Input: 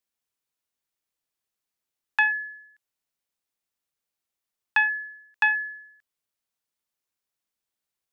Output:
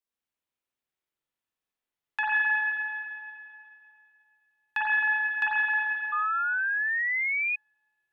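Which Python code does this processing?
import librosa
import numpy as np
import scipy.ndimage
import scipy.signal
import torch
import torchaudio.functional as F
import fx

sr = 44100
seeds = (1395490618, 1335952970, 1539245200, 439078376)

y = fx.rev_spring(x, sr, rt60_s=2.5, pass_ms=(43, 51), chirp_ms=50, drr_db=-7.5)
y = fx.spec_paint(y, sr, seeds[0], shape='rise', start_s=6.12, length_s=1.44, low_hz=1200.0, high_hz=2500.0, level_db=-19.0)
y = y * librosa.db_to_amplitude(-8.5)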